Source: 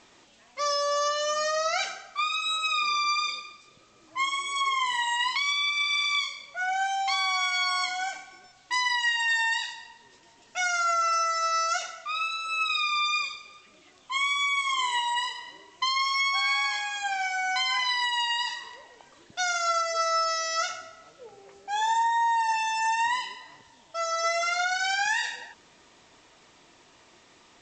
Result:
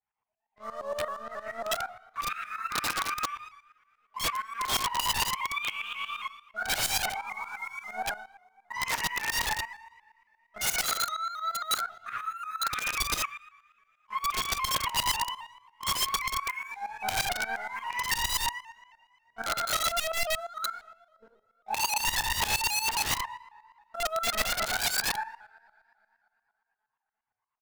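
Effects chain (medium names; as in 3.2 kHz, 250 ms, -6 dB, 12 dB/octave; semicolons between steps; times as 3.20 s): formants replaced by sine waves; low-pass 1.2 kHz 12 dB/octave; bass shelf 220 Hz -9 dB; feedback delay 61 ms, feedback 23%, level -18 dB; monotone LPC vocoder at 8 kHz 220 Hz; waveshaping leveller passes 2; two-slope reverb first 0.52 s, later 2.7 s, from -27 dB, DRR -2.5 dB; integer overflow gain 17 dB; tremolo saw up 8.6 Hz, depth 85%; vibrato with a chosen wave saw up 3.7 Hz, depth 100 cents; trim -3 dB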